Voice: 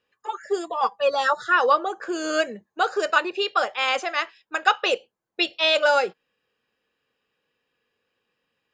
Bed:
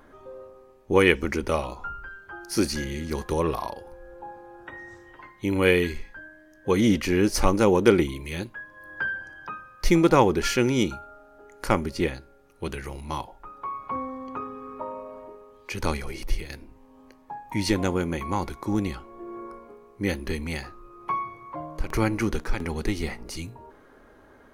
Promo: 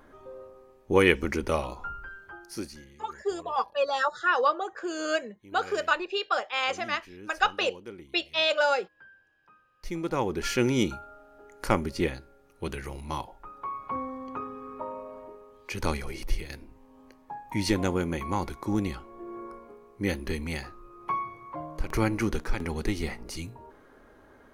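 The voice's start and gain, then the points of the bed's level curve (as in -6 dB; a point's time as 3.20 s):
2.75 s, -5.0 dB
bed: 2.25 s -2 dB
3.02 s -25 dB
9.40 s -25 dB
10.63 s -2 dB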